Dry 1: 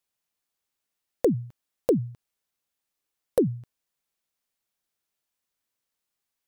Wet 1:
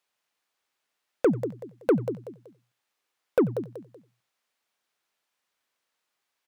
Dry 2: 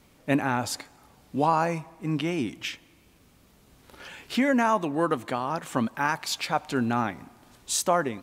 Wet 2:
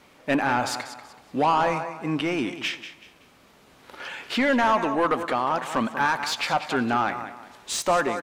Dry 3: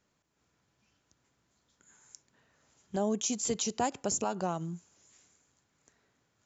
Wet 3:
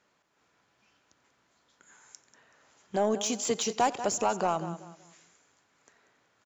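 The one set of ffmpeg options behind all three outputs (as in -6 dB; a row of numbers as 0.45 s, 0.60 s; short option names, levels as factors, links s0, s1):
-filter_complex "[0:a]asplit=2[s0][s1];[s1]aecho=0:1:189|378|567:0.2|0.0579|0.0168[s2];[s0][s2]amix=inputs=2:normalize=0,asplit=2[s3][s4];[s4]highpass=f=720:p=1,volume=8.91,asoftclip=type=tanh:threshold=0.398[s5];[s3][s5]amix=inputs=2:normalize=0,lowpass=f=2400:p=1,volume=0.501,asplit=2[s6][s7];[s7]aecho=0:1:90:0.0891[s8];[s6][s8]amix=inputs=2:normalize=0,volume=0.708"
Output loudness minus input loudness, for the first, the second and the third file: 0.0 LU, +2.5 LU, +3.5 LU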